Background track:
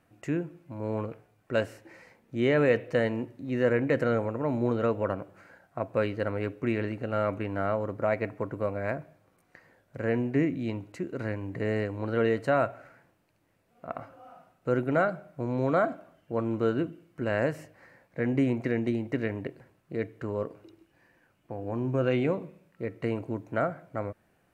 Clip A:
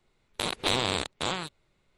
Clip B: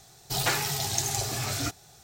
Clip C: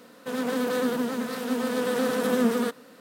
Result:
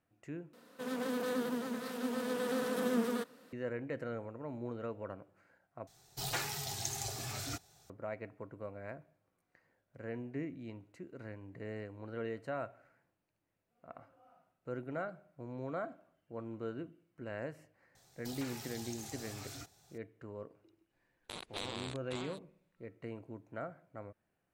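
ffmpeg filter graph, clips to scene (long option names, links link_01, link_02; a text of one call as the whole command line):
ffmpeg -i bed.wav -i cue0.wav -i cue1.wav -i cue2.wav -filter_complex "[2:a]asplit=2[link_01][link_02];[0:a]volume=-14.5dB[link_03];[link_02]acompressor=threshold=-31dB:ratio=6:attack=3.2:release=140:knee=1:detection=peak[link_04];[link_03]asplit=3[link_05][link_06][link_07];[link_05]atrim=end=0.534[link_08];[3:a]atrim=end=3,asetpts=PTS-STARTPTS,volume=-9.5dB[link_09];[link_06]atrim=start=3.526:end=5.874[link_10];[link_01]atrim=end=2.03,asetpts=PTS-STARTPTS,volume=-10.5dB[link_11];[link_07]atrim=start=7.896[link_12];[link_04]atrim=end=2.03,asetpts=PTS-STARTPTS,volume=-12.5dB,afade=type=in:duration=0.004:curve=hsin,afade=type=out:start_time=2.026:duration=0.004:curve=hsin,adelay=17950[link_13];[1:a]atrim=end=1.97,asetpts=PTS-STARTPTS,volume=-15.5dB,afade=type=in:duration=0.004:curve=hsin,afade=type=out:start_time=1.966:duration=0.004:curve=hsin,adelay=20900[link_14];[link_08][link_09]acrossfade=duration=0.004:curve1=hsin:curve2=hsin[link_15];[link_15][link_10]acrossfade=duration=0.004:curve1=hsin:curve2=hsin[link_16];[link_16][link_11]acrossfade=duration=0.004:curve1=hsin:curve2=hsin[link_17];[link_17][link_12]acrossfade=duration=0.004:curve1=hsin:curve2=hsin[link_18];[link_18][link_13][link_14]amix=inputs=3:normalize=0" out.wav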